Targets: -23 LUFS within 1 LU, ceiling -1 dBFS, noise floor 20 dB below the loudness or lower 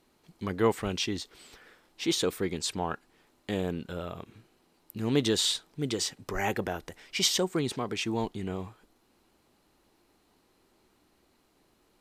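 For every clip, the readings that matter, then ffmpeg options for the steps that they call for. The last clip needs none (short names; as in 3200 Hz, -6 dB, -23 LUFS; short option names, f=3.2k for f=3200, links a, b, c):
loudness -30.5 LUFS; peak -11.0 dBFS; loudness target -23.0 LUFS
-> -af "volume=7.5dB"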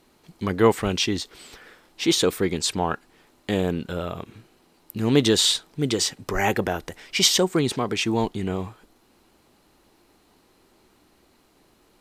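loudness -23.0 LUFS; peak -3.5 dBFS; noise floor -61 dBFS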